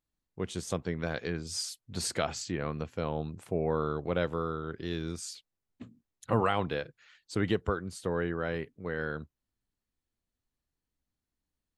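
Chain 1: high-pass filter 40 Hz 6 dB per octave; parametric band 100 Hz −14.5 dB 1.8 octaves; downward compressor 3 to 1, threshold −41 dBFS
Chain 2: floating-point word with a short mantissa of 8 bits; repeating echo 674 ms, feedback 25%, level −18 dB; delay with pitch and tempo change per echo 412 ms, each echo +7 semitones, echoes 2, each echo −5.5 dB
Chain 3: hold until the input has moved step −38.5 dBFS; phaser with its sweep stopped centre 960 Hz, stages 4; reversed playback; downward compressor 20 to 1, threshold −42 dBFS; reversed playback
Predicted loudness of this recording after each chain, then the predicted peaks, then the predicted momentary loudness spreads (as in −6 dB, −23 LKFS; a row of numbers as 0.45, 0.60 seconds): −44.0, −33.0, −48.0 LKFS; −23.5, −12.0, −32.0 dBFS; 10, 8, 7 LU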